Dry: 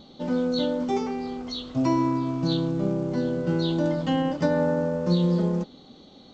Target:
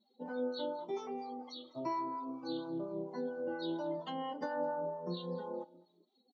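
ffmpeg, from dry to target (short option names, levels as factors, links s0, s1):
-filter_complex "[0:a]highpass=360,afftdn=nr=25:nf=-42,acrossover=split=6400[s0][s1];[s1]acompressor=threshold=0.00112:ratio=4:attack=1:release=60[s2];[s0][s2]amix=inputs=2:normalize=0,equalizer=f=900:t=o:w=0.26:g=6.5,acompressor=threshold=0.0447:ratio=3,acrossover=split=760[s3][s4];[s3]aeval=exprs='val(0)*(1-0.7/2+0.7/2*cos(2*PI*4.3*n/s))':c=same[s5];[s4]aeval=exprs='val(0)*(1-0.7/2-0.7/2*cos(2*PI*4.3*n/s))':c=same[s6];[s5][s6]amix=inputs=2:normalize=0,aecho=1:1:211|422:0.0794|0.0207,asplit=2[s7][s8];[s8]adelay=2.5,afreqshift=0.98[s9];[s7][s9]amix=inputs=2:normalize=1,volume=0.75"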